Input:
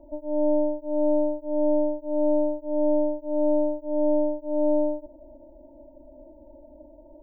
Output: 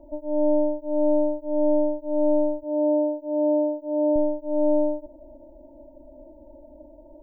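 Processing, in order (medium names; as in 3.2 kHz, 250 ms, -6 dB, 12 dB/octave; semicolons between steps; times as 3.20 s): 2.63–4.16 s: high-pass 88 Hz 6 dB/octave; trim +1.5 dB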